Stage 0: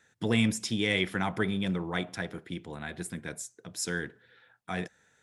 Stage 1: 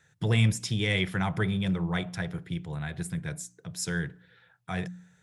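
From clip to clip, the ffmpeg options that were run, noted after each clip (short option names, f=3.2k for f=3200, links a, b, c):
-af "lowshelf=f=190:t=q:w=3:g=6.5,bandreject=f=59.7:t=h:w=4,bandreject=f=119.4:t=h:w=4,bandreject=f=179.1:t=h:w=4,bandreject=f=238.8:t=h:w=4,bandreject=f=298.5:t=h:w=4"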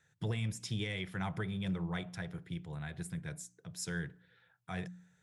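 -af "alimiter=limit=-18.5dB:level=0:latency=1:release=283,volume=-7.5dB"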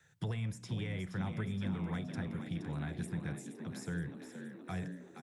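-filter_complex "[0:a]acrossover=split=200|680|1700[a][b][c][d];[a]acompressor=threshold=-40dB:ratio=4[e];[b]acompressor=threshold=-51dB:ratio=4[f];[c]acompressor=threshold=-54dB:ratio=4[g];[d]acompressor=threshold=-58dB:ratio=4[h];[e][f][g][h]amix=inputs=4:normalize=0,asplit=2[i][j];[j]asplit=8[k][l][m][n][o][p][q][r];[k]adelay=471,afreqshift=54,volume=-9dB[s];[l]adelay=942,afreqshift=108,volume=-13.2dB[t];[m]adelay=1413,afreqshift=162,volume=-17.3dB[u];[n]adelay=1884,afreqshift=216,volume=-21.5dB[v];[o]adelay=2355,afreqshift=270,volume=-25.6dB[w];[p]adelay=2826,afreqshift=324,volume=-29.8dB[x];[q]adelay=3297,afreqshift=378,volume=-33.9dB[y];[r]adelay=3768,afreqshift=432,volume=-38.1dB[z];[s][t][u][v][w][x][y][z]amix=inputs=8:normalize=0[aa];[i][aa]amix=inputs=2:normalize=0,volume=4dB"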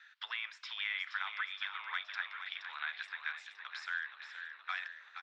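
-af "asuperpass=centerf=2300:order=8:qfactor=0.68,volume=11.5dB"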